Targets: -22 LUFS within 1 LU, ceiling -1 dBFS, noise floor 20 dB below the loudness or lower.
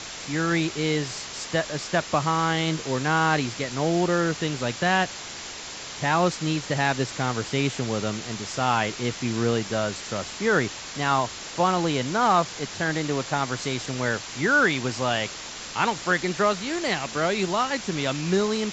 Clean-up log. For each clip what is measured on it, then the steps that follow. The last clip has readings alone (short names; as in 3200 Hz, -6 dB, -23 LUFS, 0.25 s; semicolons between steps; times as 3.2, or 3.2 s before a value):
noise floor -37 dBFS; noise floor target -45 dBFS; loudness -25.0 LUFS; peak -7.5 dBFS; loudness target -22.0 LUFS
-> denoiser 8 dB, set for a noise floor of -37 dBFS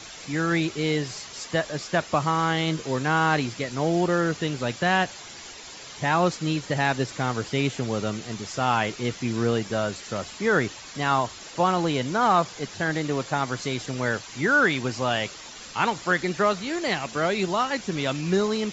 noise floor -42 dBFS; noise floor target -46 dBFS
-> denoiser 6 dB, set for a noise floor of -42 dBFS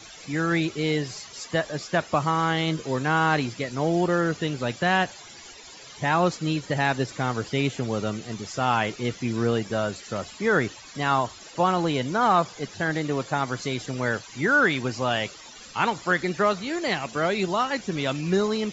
noise floor -45 dBFS; noise floor target -46 dBFS
-> denoiser 6 dB, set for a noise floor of -45 dBFS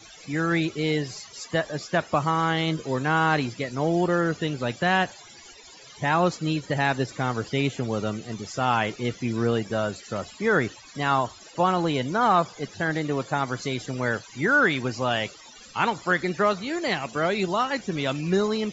noise floor -48 dBFS; loudness -25.5 LUFS; peak -8.0 dBFS; loudness target -22.0 LUFS
-> gain +3.5 dB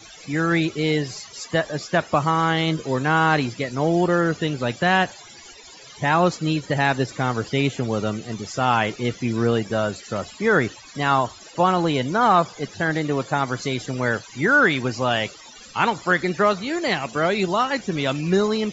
loudness -22.0 LUFS; peak -4.5 dBFS; noise floor -44 dBFS